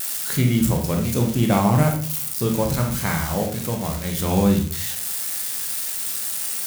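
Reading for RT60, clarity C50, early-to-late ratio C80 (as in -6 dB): 0.50 s, 6.5 dB, 11.5 dB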